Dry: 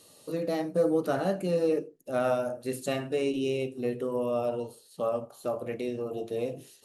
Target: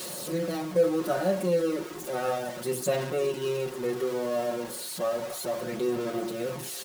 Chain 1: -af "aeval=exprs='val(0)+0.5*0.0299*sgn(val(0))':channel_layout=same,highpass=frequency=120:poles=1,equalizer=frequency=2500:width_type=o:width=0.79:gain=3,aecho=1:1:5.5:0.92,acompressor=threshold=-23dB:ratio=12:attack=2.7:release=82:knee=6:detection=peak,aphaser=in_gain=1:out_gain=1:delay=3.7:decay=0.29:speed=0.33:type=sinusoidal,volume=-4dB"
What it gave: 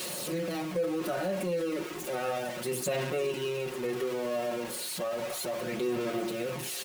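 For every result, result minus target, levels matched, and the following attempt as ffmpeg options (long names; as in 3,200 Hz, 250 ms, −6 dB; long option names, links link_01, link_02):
downward compressor: peak gain reduction +9 dB; 2,000 Hz band +4.0 dB
-af "aeval=exprs='val(0)+0.5*0.0299*sgn(val(0))':channel_layout=same,highpass=frequency=120:poles=1,equalizer=frequency=2500:width_type=o:width=0.79:gain=3,aecho=1:1:5.5:0.92,aphaser=in_gain=1:out_gain=1:delay=3.7:decay=0.29:speed=0.33:type=sinusoidal,volume=-4dB"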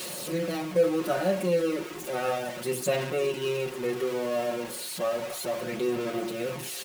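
2,000 Hz band +3.0 dB
-af "aeval=exprs='val(0)+0.5*0.0299*sgn(val(0))':channel_layout=same,highpass=frequency=120:poles=1,equalizer=frequency=2500:width_type=o:width=0.79:gain=-3,aecho=1:1:5.5:0.92,aphaser=in_gain=1:out_gain=1:delay=3.7:decay=0.29:speed=0.33:type=sinusoidal,volume=-4dB"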